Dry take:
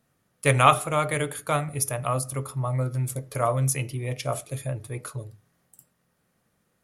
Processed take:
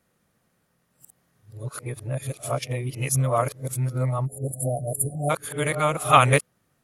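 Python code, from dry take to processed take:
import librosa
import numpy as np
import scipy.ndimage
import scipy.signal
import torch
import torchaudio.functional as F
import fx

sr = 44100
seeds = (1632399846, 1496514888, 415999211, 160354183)

y = np.flip(x).copy()
y = fx.spec_erase(y, sr, start_s=4.26, length_s=1.04, low_hz=780.0, high_hz=7100.0)
y = F.gain(torch.from_numpy(y), 1.5).numpy()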